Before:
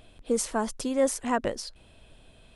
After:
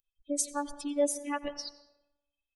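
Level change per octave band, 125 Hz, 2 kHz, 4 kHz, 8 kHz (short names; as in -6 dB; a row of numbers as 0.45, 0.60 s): under -15 dB, -6.0 dB, -3.0 dB, -1.0 dB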